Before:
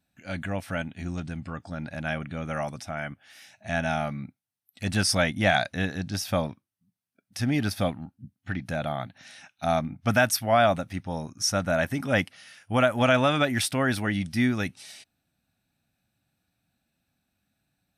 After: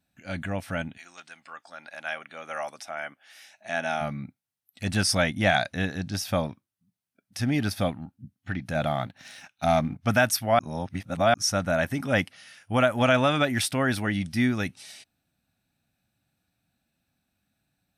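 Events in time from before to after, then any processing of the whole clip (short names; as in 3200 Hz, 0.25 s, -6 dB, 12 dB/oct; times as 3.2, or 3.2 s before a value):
0.96–4 HPF 1200 Hz -> 300 Hz
8.75–10.01 sample leveller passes 1
10.59–11.34 reverse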